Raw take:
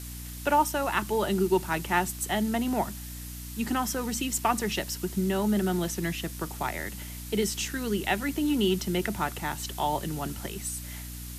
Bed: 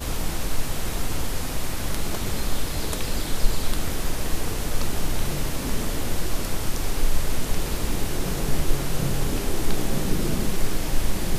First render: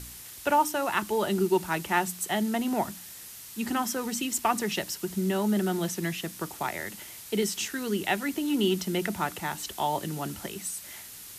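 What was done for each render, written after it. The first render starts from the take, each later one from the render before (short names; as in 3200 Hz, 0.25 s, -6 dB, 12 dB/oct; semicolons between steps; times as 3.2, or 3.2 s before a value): de-hum 60 Hz, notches 5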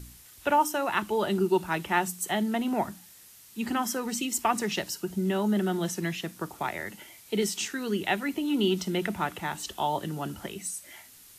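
noise print and reduce 8 dB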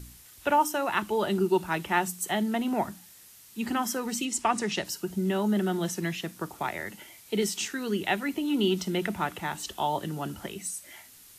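4.25–4.85 LPF 10000 Hz 24 dB/oct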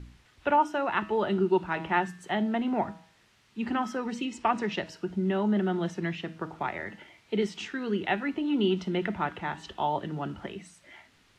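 LPF 2800 Hz 12 dB/oct; de-hum 160.9 Hz, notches 35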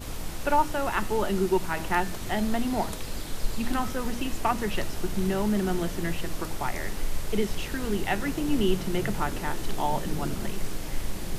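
add bed -8 dB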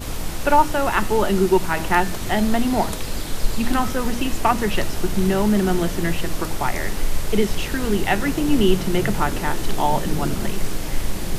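gain +7.5 dB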